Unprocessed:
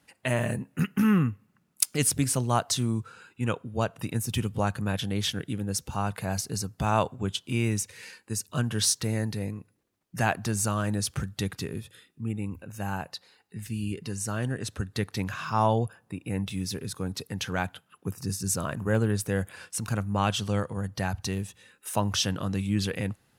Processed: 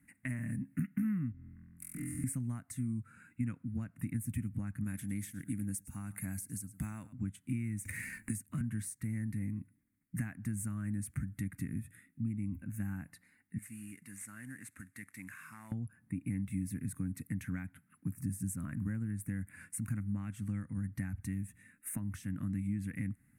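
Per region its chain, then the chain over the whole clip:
1.32–2.24 high shelf 3100 Hz -11.5 dB + compressor 4:1, threshold -44 dBFS + flutter echo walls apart 4 m, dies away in 1.5 s
4.84–7.13 tone controls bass -4 dB, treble +10 dB + echo 0.106 s -19.5 dB
7.85–8.61 sample leveller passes 1 + three-band squash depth 100%
13.58–15.72 CVSD 64 kbps + HPF 1300 Hz 6 dB/oct + compressor 2:1, threshold -40 dBFS
whole clip: compressor 10:1, threshold -33 dBFS; EQ curve 150 Hz 0 dB, 280 Hz +3 dB, 400 Hz -23 dB, 920 Hz -20 dB, 2100 Hz -1 dB, 3100 Hz -26 dB, 5300 Hz -25 dB, 8700 Hz -4 dB; gain +1 dB

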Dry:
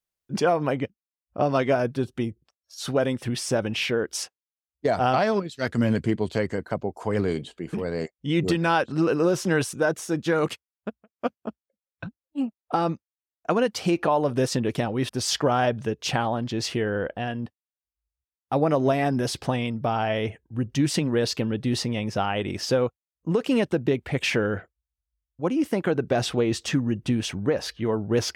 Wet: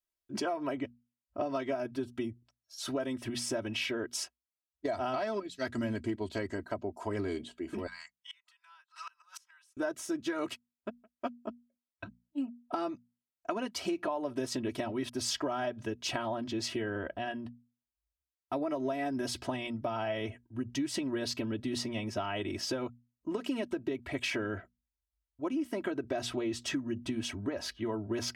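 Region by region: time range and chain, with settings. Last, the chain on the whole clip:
7.87–9.77 steep high-pass 940 Hz 48 dB/oct + flipped gate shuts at -25 dBFS, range -28 dB
whole clip: notches 60/120/180/240 Hz; comb 3.1 ms, depth 93%; compressor, threshold -22 dBFS; gain -8 dB

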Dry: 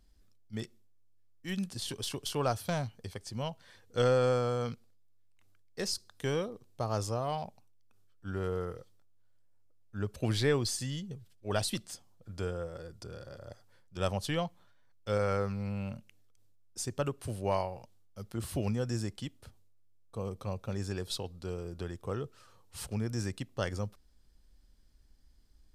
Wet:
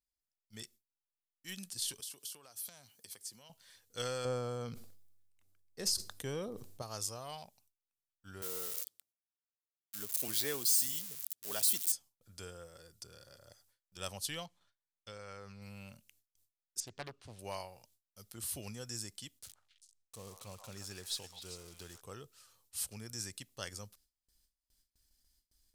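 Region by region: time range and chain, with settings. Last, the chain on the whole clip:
2–3.5 HPF 170 Hz + high shelf 8500 Hz +7.5 dB + compressor 10:1, threshold -43 dBFS
4.25–6.82 tilt shelf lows +7.5 dB, about 1300 Hz + sustainer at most 39 dB/s
8.42–11.92 switching spikes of -26.5 dBFS + HPF 240 Hz + tilt -1.5 dB/oct
14.46–15.62 air absorption 61 m + compressor 4:1, threshold -33 dBFS
16.8–17.39 air absorption 170 m + Doppler distortion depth 0.62 ms
19.39–22.01 switching spikes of -36.5 dBFS + air absorption 62 m + delay with a stepping band-pass 0.131 s, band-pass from 950 Hz, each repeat 1.4 oct, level -2.5 dB
whole clip: gate with hold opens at -53 dBFS; pre-emphasis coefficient 0.9; gain +5 dB

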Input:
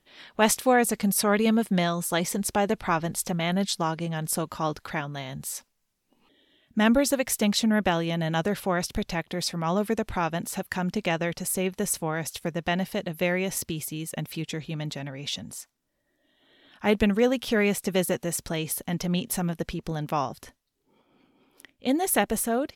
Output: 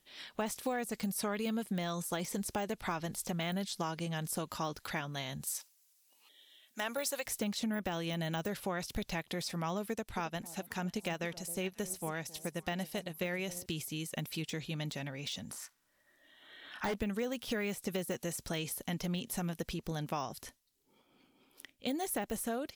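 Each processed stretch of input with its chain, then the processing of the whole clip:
5.47–7.26 HPF 590 Hz + high shelf 3500 Hz +8.5 dB
9.88–13.66 echo with dull and thin repeats by turns 0.268 s, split 810 Hz, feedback 55%, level -14 dB + upward expander, over -40 dBFS
15.51–16.94 bell 1400 Hz +12.5 dB 1.9 oct + hard clip -19 dBFS + doubler 31 ms -7 dB
whole clip: de-esser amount 100%; high shelf 3200 Hz +11.5 dB; compressor 6:1, threshold -26 dBFS; gain -6 dB

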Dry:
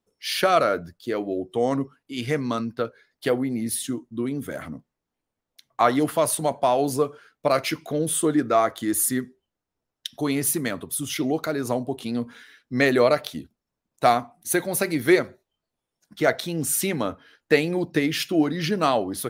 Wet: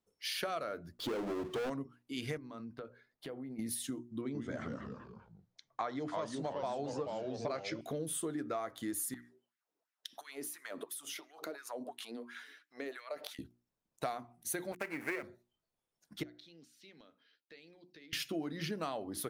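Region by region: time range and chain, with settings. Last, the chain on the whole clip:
0.99–1.7 LPF 1400 Hz 6 dB/oct + power-law curve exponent 0.5 + hard clip -19 dBFS
2.37–3.59 high shelf 2900 Hz -11 dB + compressor 5:1, threshold -36 dBFS
4.21–7.81 steep low-pass 7000 Hz + notch 2800 Hz, Q 6.6 + echoes that change speed 0.137 s, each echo -2 st, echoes 3, each echo -6 dB
9.14–13.39 compressor 12:1, threshold -33 dBFS + LFO high-pass sine 2.9 Hz 290–1900 Hz
14.72–15.23 switching dead time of 0.18 ms + HPF 470 Hz 6 dB/oct + resonant high shelf 2800 Hz -7.5 dB, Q 3
16.23–18.13 HPF 530 Hz + compressor 2.5:1, threshold -44 dBFS + EQ curve 180 Hz 0 dB, 870 Hz -19 dB, 4400 Hz -5 dB, 9300 Hz -27 dB
whole clip: notches 60/120/180/240/300/360 Hz; compressor 5:1, threshold -30 dBFS; gain -6 dB

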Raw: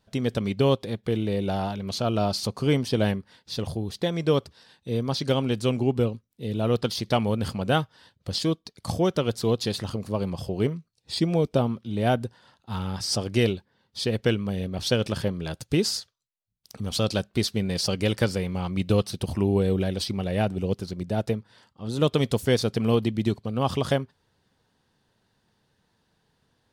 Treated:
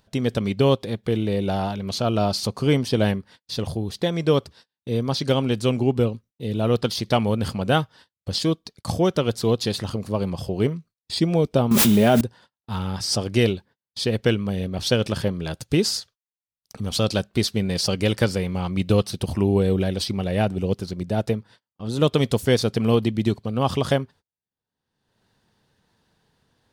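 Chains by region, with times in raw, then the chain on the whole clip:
11.71–12.21 comb 4.9 ms, depth 50% + requantised 8-bit, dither triangular + fast leveller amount 100%
whole clip: gate -48 dBFS, range -37 dB; upward compressor, threshold -41 dBFS; gain +3 dB

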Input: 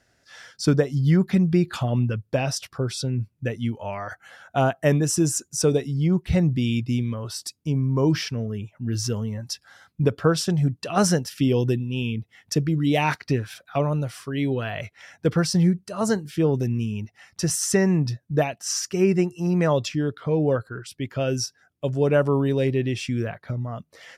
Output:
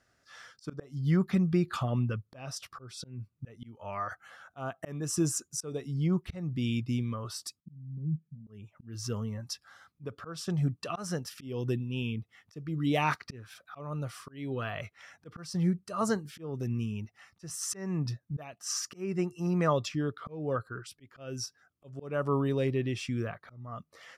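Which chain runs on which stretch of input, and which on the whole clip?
7.6–8.47 envelope flanger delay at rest 9.7 ms, full sweep at -18.5 dBFS + Butterworth band-pass 170 Hz, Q 2.7
whole clip: bell 1200 Hz +11 dB 0.28 oct; auto swell 0.345 s; gain -7 dB

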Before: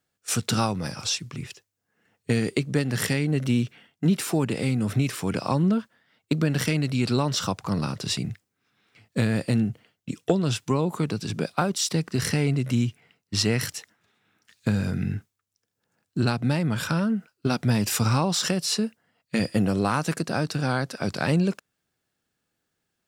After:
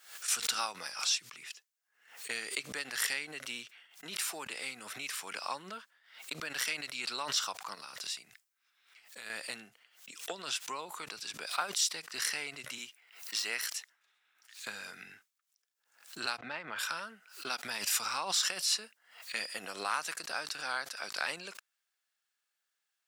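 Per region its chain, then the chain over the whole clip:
7.75–9.3 high shelf 7100 Hz +5.5 dB + compressor 2.5:1, threshold -34 dBFS
12.78–13.64 de-esser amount 55% + HPF 190 Hz + high shelf 12000 Hz +8.5 dB
16.38–16.79 LPF 2300 Hz + transient shaper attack +5 dB, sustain +10 dB
whole clip: HPF 1200 Hz 12 dB/oct; backwards sustainer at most 110 dB/s; gain -3.5 dB

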